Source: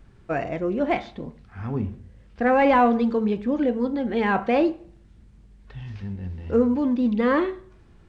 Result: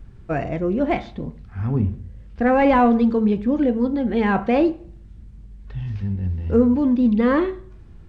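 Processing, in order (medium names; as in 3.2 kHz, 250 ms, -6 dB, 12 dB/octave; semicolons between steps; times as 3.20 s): bass shelf 210 Hz +11 dB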